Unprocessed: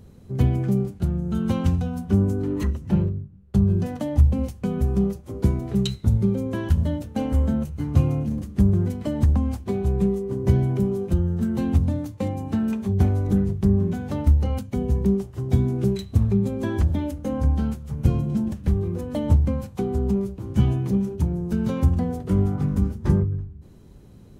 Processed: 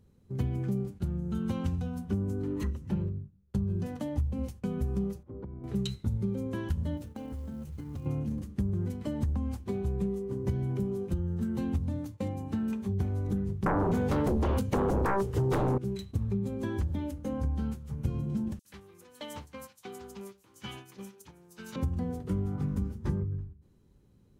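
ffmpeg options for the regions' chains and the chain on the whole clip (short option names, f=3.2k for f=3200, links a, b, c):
-filter_complex "[0:a]asettb=1/sr,asplit=3[a][b][c];[a]atrim=end=5.234[d];[b]atrim=start=5.23:end=5.64,asetpts=PTS-STARTPTS,afade=t=in:d=0.004:c=qsin,afade=t=out:st=0.406:d=0.004:c=qsin,lowpass=1.2k,acompressor=threshold=-30dB:ratio=12:attack=3.2:release=140:knee=1:detection=peak[e];[c]atrim=start=5.636[f];[d][e]acrossfade=d=0.004:c1=hsin:c2=qsin[g];[g][f]acrossfade=d=0.004:c1=qsin:c2=hsin,asettb=1/sr,asplit=3[h][i][j];[h]atrim=end=6.974[k];[i]atrim=start=6.97:end=8.06,asetpts=PTS-STARTPTS,afade=t=in:d=0.004:c=qsin,afade=t=out:st=1.086:d=0.004:c=qsin,acrusher=bits=8:mode=log:mix=0:aa=0.000001,acompressor=threshold=-29dB:ratio=6:attack=3.2:release=140:knee=1:detection=peak[l];[j]atrim=start=8.056[m];[k][l]acrossfade=d=0.004:c1=hsin:c2=qsin[n];[n][m]acrossfade=d=0.004:c1=qsin:c2=hsin,asettb=1/sr,asplit=3[o][p][q];[o]atrim=end=13.664[r];[p]atrim=start=13.66:end=15.78,asetpts=PTS-STARTPTS,afade=t=in:d=0.004:c=qsin,afade=t=out:st=2.116:d=0.004:c=qsin,equalizer=f=450:t=o:w=0.3:g=14,aeval=exprs='0.473*sin(PI/2*5.62*val(0)/0.473)':c=same[s];[q]atrim=start=15.776[t];[r][s]acrossfade=d=0.004:c1=hsin:c2=qsin[u];[u][t]acrossfade=d=0.004:c1=qsin:c2=hsin,asettb=1/sr,asplit=3[v][w][x];[v]atrim=end=18.594[y];[w]atrim=start=18.59:end=21.76,asetpts=PTS-STARTPTS,afade=t=in:d=0.004:c=qsin,afade=t=out:st=3.166:d=0.004:c=qsin,highpass=f=460:p=1,tiltshelf=f=860:g=-9.5,acrossover=split=5300[z][aa];[z]adelay=60[ab];[ab][aa]amix=inputs=2:normalize=0,atrim=end_sample=139797[ac];[x]atrim=start=21.756[ad];[y][ac]acrossfade=d=0.004:c1=hsin:c2=qsin[ae];[ae][ad]acrossfade=d=0.004:c1=qsin:c2=hsin,agate=range=-8dB:threshold=-37dB:ratio=16:detection=peak,equalizer=f=670:w=7.2:g=-7,acompressor=threshold=-19dB:ratio=6,volume=-7dB"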